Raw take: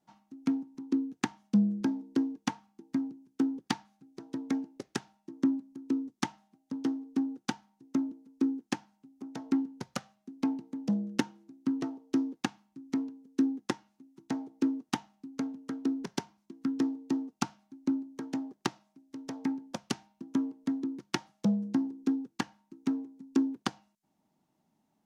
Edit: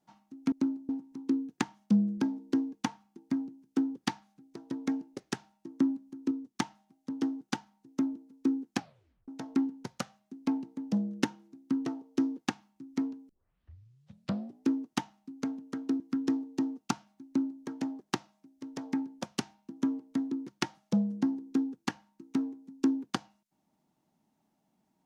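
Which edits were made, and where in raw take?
5.94–6.19 gain -3.5 dB
7.04–7.37 cut
8.71 tape stop 0.53 s
13.25 tape start 1.39 s
15.96–16.52 cut
17.78–18.15 copy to 0.52

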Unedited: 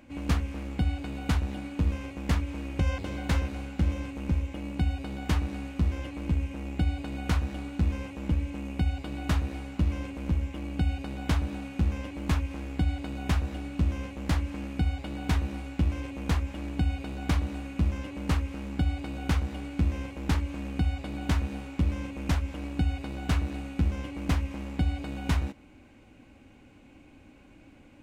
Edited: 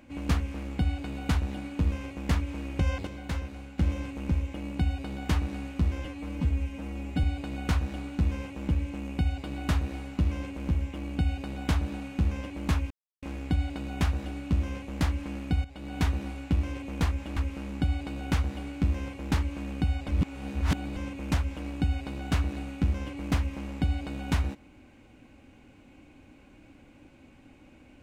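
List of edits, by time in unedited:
3.07–3.78 gain -6 dB
6.05–6.84 stretch 1.5×
12.51 insert silence 0.32 s
14.93–15.27 fade in, from -15 dB
16.65–18.34 cut
21.06–21.94 reverse

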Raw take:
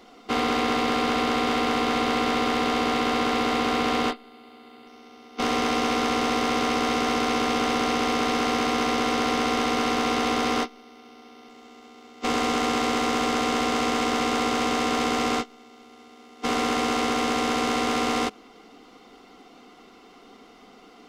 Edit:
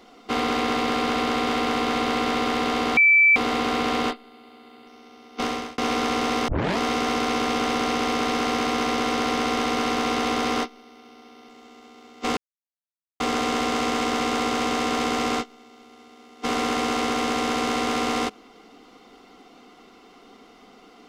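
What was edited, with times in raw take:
2.97–3.36 bleep 2320 Hz -12 dBFS
5.4–5.78 fade out
6.48 tape start 0.30 s
12.37–13.2 mute

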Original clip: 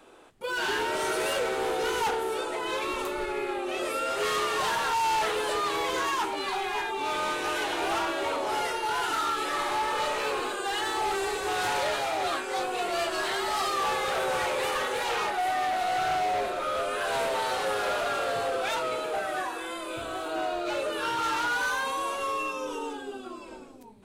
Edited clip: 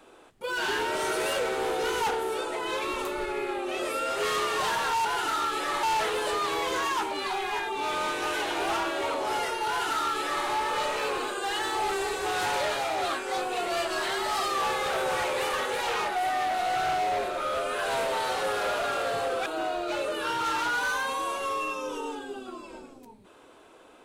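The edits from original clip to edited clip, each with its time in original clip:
8.9–9.68 copy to 5.05
18.68–20.24 cut

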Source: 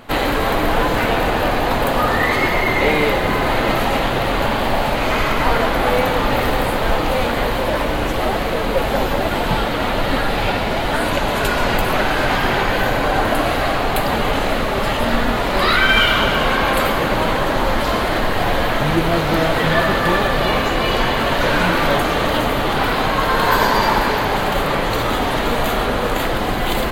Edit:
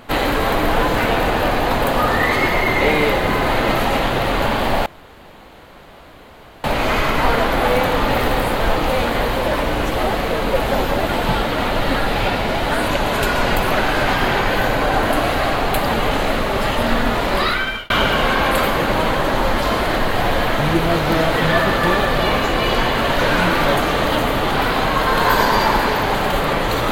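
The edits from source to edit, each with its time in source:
4.86 insert room tone 1.78 s
15.52–16.12 fade out

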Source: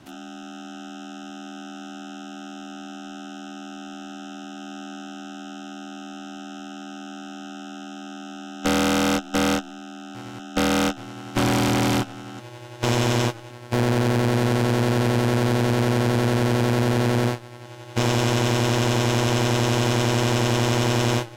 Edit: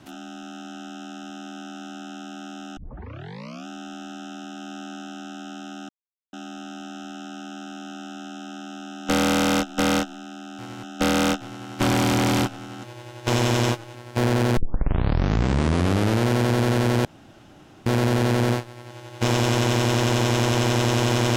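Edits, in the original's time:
2.77 tape start 0.90 s
5.89 insert silence 0.44 s
14.13 tape start 1.69 s
16.61 insert room tone 0.81 s

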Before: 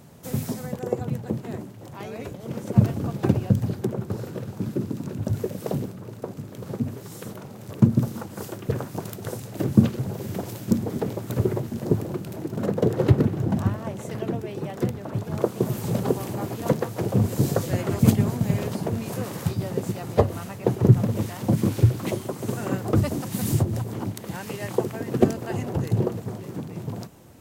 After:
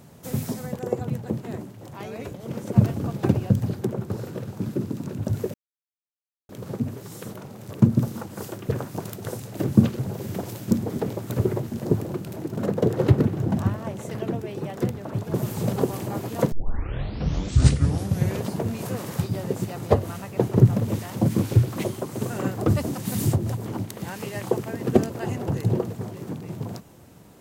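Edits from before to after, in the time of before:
5.54–6.49 mute
15.34–15.61 cut
16.79 tape start 1.91 s

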